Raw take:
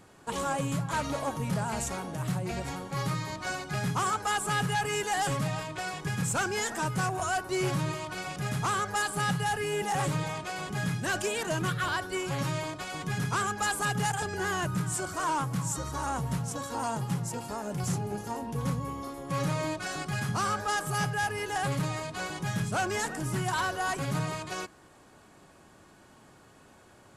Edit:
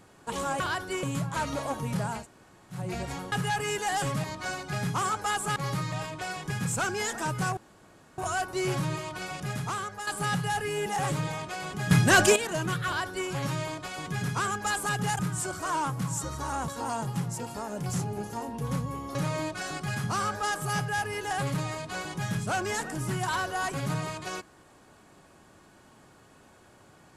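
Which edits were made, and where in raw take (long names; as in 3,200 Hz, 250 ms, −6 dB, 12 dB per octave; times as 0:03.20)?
0:01.76–0:02.34: fill with room tone, crossfade 0.16 s
0:02.89–0:03.25: swap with 0:04.57–0:05.49
0:07.14: splice in room tone 0.61 s
0:08.36–0:09.03: fade out, to −10 dB
0:10.87–0:11.32: clip gain +11 dB
0:11.82–0:12.25: duplicate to 0:00.60
0:14.15–0:14.73: remove
0:16.22–0:16.62: remove
0:19.09–0:19.40: remove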